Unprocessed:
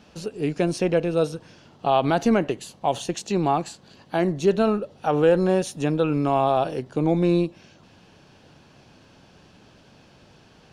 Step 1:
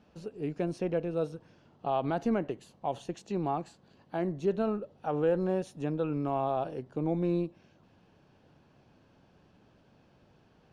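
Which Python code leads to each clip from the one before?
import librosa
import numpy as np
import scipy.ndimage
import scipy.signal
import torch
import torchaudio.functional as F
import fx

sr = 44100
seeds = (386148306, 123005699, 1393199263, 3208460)

y = fx.high_shelf(x, sr, hz=2500.0, db=-11.5)
y = y * 10.0 ** (-9.0 / 20.0)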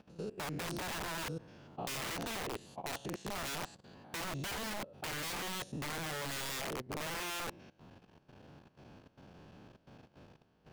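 y = fx.spec_steps(x, sr, hold_ms=100)
y = (np.mod(10.0 ** (33.0 / 20.0) * y + 1.0, 2.0) - 1.0) / 10.0 ** (33.0 / 20.0)
y = fx.level_steps(y, sr, step_db=16)
y = y * 10.0 ** (8.5 / 20.0)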